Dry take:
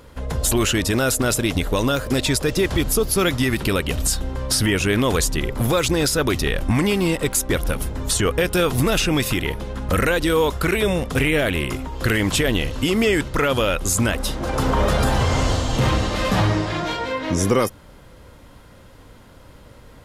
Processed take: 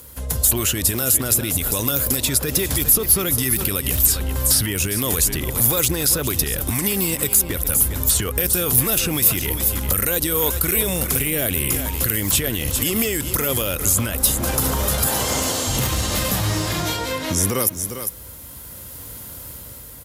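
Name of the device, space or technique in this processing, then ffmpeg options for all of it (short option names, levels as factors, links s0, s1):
FM broadcast chain: -filter_complex "[0:a]lowshelf=f=110:g=8.5,asettb=1/sr,asplit=3[s0][s1][s2];[s0]atrim=end=15.064[s3];[s1]atrim=start=15.06:end=15.67,asetpts=PTS-STARTPTS,afade=t=in:d=0.004:c=qsin,afade=t=out:st=0.606:d=0.004:c=qsin,highpass=240[s4];[s2]atrim=start=15.666[s5];[s3][s4]acrossfade=d=0.004:c1=hsin:c2=qsin[s6];[s6][s5]acrossfade=d=0.004:c1=qsin:c2=hsin,highpass=f=52:w=0.5412,highpass=f=52:w=1.3066,aecho=1:1:401:0.188,dynaudnorm=f=330:g=7:m=2.82,acrossover=split=760|3600[s7][s8][s9];[s7]acompressor=threshold=0.2:ratio=4[s10];[s8]acompressor=threshold=0.0631:ratio=4[s11];[s9]acompressor=threshold=0.02:ratio=4[s12];[s10][s11][s12]amix=inputs=3:normalize=0,aemphasis=mode=production:type=50fm,alimiter=limit=0.355:level=0:latency=1:release=59,asoftclip=type=hard:threshold=0.299,lowpass=f=15000:w=0.5412,lowpass=f=15000:w=1.3066,aemphasis=mode=production:type=50fm,volume=0.631"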